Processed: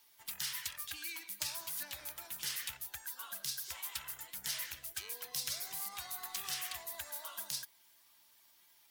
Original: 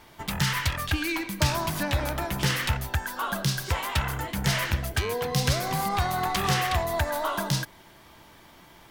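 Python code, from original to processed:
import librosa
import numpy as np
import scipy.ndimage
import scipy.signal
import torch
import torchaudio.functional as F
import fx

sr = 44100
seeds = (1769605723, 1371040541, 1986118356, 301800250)

y = fx.spec_quant(x, sr, step_db=15)
y = librosa.effects.preemphasis(y, coef=0.97, zi=[0.0])
y = y * 10.0 ** (-5.5 / 20.0)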